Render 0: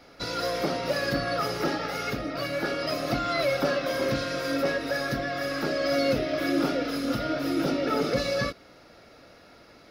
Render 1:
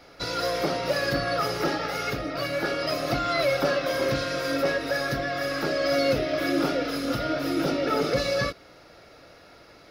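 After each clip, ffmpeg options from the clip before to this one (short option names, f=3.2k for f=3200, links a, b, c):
-af "equalizer=f=230:w=3.3:g=-6.5,volume=2dB"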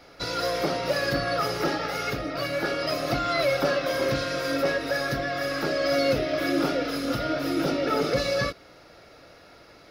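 -af anull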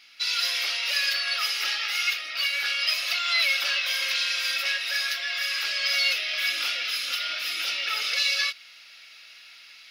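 -af "dynaudnorm=f=150:g=3:m=5dB,aeval=exprs='val(0)+0.0224*(sin(2*PI*60*n/s)+sin(2*PI*2*60*n/s)/2+sin(2*PI*3*60*n/s)/3+sin(2*PI*4*60*n/s)/4+sin(2*PI*5*60*n/s)/5)':c=same,highpass=f=2.7k:t=q:w=2.5"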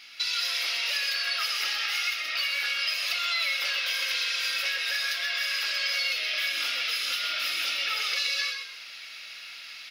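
-filter_complex "[0:a]acompressor=threshold=-33dB:ratio=4,asplit=2[a][b];[b]asplit=4[c][d][e][f];[c]adelay=129,afreqshift=-47,volume=-6.5dB[g];[d]adelay=258,afreqshift=-94,volume=-16.7dB[h];[e]adelay=387,afreqshift=-141,volume=-26.8dB[i];[f]adelay=516,afreqshift=-188,volume=-37dB[j];[g][h][i][j]amix=inputs=4:normalize=0[k];[a][k]amix=inputs=2:normalize=0,volume=5dB"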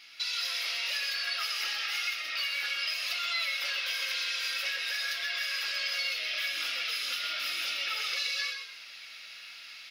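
-af "flanger=delay=5.9:depth=5.5:regen=-52:speed=0.59:shape=sinusoidal"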